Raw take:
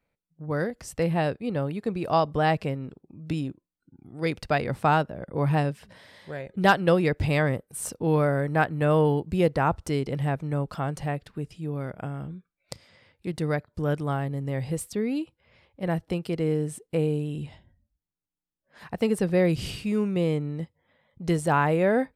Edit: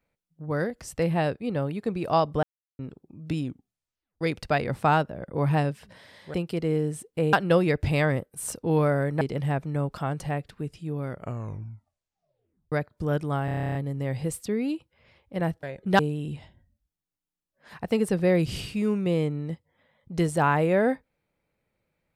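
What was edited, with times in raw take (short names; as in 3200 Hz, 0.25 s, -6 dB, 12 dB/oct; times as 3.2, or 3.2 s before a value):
2.43–2.79 mute
3.44 tape stop 0.77 s
6.34–6.7 swap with 16.1–17.09
8.58–9.98 cut
11.86 tape stop 1.63 s
14.22 stutter 0.03 s, 11 plays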